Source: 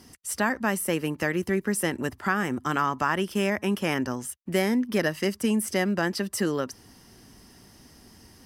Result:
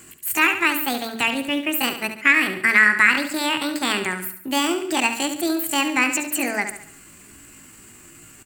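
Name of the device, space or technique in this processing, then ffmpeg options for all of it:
chipmunk voice: -filter_complex "[0:a]bandreject=f=50:t=h:w=6,bandreject=f=100:t=h:w=6,bandreject=f=150:t=h:w=6,bandreject=f=200:t=h:w=6,bandreject=f=250:t=h:w=6,bandreject=f=300:t=h:w=6,bandreject=f=350:t=h:w=6,bandreject=f=400:t=h:w=6,asetrate=66075,aresample=44100,atempo=0.66742,asettb=1/sr,asplit=3[s0][s1][s2];[s0]atrim=end=1.344[s3];[s1]atrim=start=1.34:end=2.39,asetpts=PTS-STARTPTS,afade=t=in:d=0.004:c=qsin,afade=t=out:st=1.046:d=0.004:c=qsin,agate=range=0.251:threshold=0.0316:ratio=16:detection=peak[s4];[s2]atrim=start=2.386[s5];[s3][s4]acrossfade=d=0.004:c1=hsin:c2=qsin[s6];[s6][s5]acrossfade=d=0.004:c1=qsin:c2=hsin,equalizer=f=125:t=o:w=1:g=-3,equalizer=f=250:t=o:w=1:g=4,equalizer=f=500:t=o:w=1:g=-11,equalizer=f=2000:t=o:w=1:g=9,equalizer=f=4000:t=o:w=1:g=-4,equalizer=f=8000:t=o:w=1:g=7,aecho=1:1:70|140|210|280|350:0.335|0.154|0.0709|0.0326|0.015,volume=1.68"

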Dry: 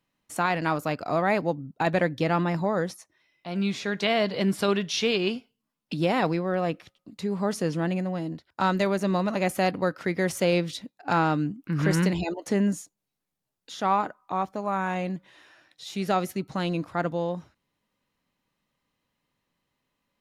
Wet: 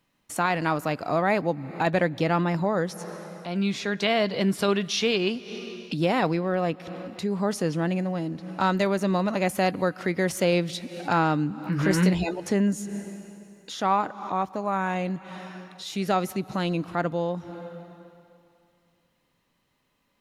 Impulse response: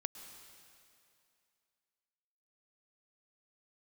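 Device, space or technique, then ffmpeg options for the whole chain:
ducked reverb: -filter_complex "[0:a]asplit=3[s0][s1][s2];[1:a]atrim=start_sample=2205[s3];[s1][s3]afir=irnorm=-1:irlink=0[s4];[s2]apad=whole_len=891220[s5];[s4][s5]sidechaincompress=threshold=0.00631:ratio=6:attack=6.2:release=158,volume=1.41[s6];[s0][s6]amix=inputs=2:normalize=0,asettb=1/sr,asplit=3[s7][s8][s9];[s7]atrim=end=11.634[s10];[s8]atrim=start=11.63:end=12.4,asetpts=PTS-STARTPTS,afade=t=in:d=0.004:c=qsin,afade=t=out:st=0.766:d=0.004:c=qsin,asplit=2[s11][s12];[s12]adelay=16,volume=0.501[s13];[s11][s13]amix=inputs=2:normalize=0,atrim=end_sample=33957[s14];[s9]atrim=start=12.396[s15];[s10][s14]acrossfade=d=0.004:c1=hsin:c2=qsin[s16];[s16][s15]acrossfade=d=0.004:c1=qsin:c2=hsin"

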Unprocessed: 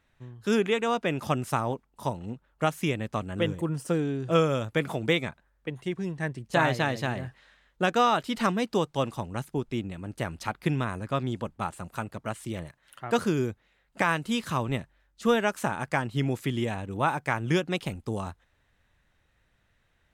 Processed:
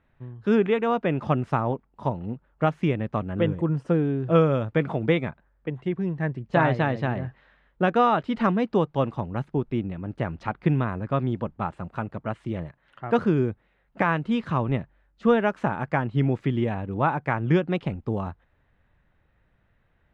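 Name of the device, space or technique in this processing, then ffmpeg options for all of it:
phone in a pocket: -af "lowpass=3000,equalizer=f=160:t=o:w=0.77:g=2,highshelf=f=2100:g=-9,volume=1.58"

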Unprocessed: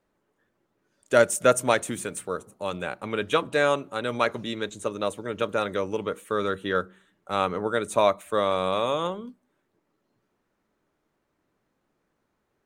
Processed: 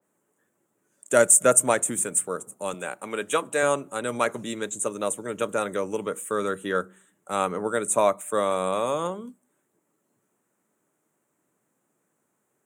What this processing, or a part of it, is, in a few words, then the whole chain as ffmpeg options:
budget condenser microphone: -filter_complex "[0:a]highpass=f=120:w=0.5412,highpass=f=120:w=1.3066,highshelf=f=6100:t=q:w=3:g=9.5,asettb=1/sr,asplit=3[s0][s1][s2];[s0]atrim=end=2.744[s3];[s1]atrim=start=2.74:end=3.63,asetpts=PTS-STARTPTS,afade=t=in:d=0.004:c=qsin,afade=t=out:st=0.886:d=0.004:c=qsin,highpass=f=310:p=1[s4];[s2]atrim=start=3.626[s5];[s3][s4]acrossfade=d=0.004:c1=hsin:c2=qsin[s6];[s6][s5]acrossfade=d=0.004:c1=qsin:c2=hsin,adynamicequalizer=threshold=0.0178:dfrequency=2300:dqfactor=0.7:tfrequency=2300:tqfactor=0.7:attack=5:release=100:ratio=0.375:range=2.5:mode=cutabove:tftype=highshelf"

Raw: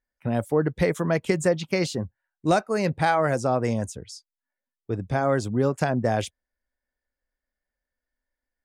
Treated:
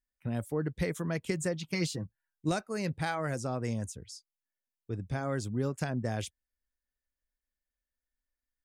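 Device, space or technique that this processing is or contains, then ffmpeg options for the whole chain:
smiley-face EQ: -filter_complex "[0:a]lowshelf=f=93:g=5.5,equalizer=f=720:t=o:w=1.6:g=-6,highshelf=f=5800:g=5.5,asettb=1/sr,asplit=3[s0][s1][s2];[s0]atrim=end=1.664[s3];[s1]atrim=start=1.66:end=2.49,asetpts=PTS-STARTPTS,afade=t=in:d=0.004:c=qsin,afade=t=out:st=0.826:d=0.004:c=qsin,aecho=1:1:6.3:0.62,atrim=end_sample=36603[s4];[s2]atrim=start=2.486[s5];[s3][s4]acrossfade=d=0.004:c1=hsin:c2=qsin[s6];[s6][s5]acrossfade=d=0.004:c1=qsin:c2=hsin,volume=0.398"

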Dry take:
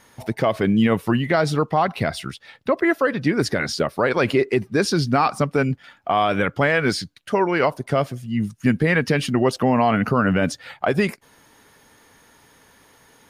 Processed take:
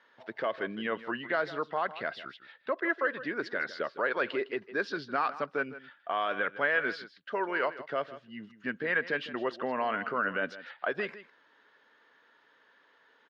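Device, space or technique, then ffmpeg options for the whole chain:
phone earpiece: -af "highpass=450,equalizer=f=780:t=q:w=4:g=-6,equalizer=f=1600:t=q:w=4:g=6,equalizer=f=2300:t=q:w=4:g=-5,lowpass=f=3700:w=0.5412,lowpass=f=3700:w=1.3066,aecho=1:1:158:0.178,volume=0.355"

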